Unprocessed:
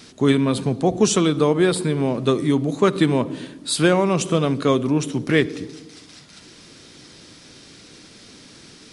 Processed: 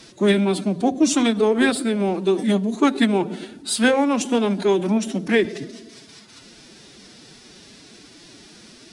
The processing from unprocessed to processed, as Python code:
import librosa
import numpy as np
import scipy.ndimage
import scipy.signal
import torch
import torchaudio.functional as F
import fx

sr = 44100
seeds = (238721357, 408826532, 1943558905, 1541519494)

y = fx.hum_notches(x, sr, base_hz=60, count=3)
y = fx.pitch_keep_formants(y, sr, semitones=6.5)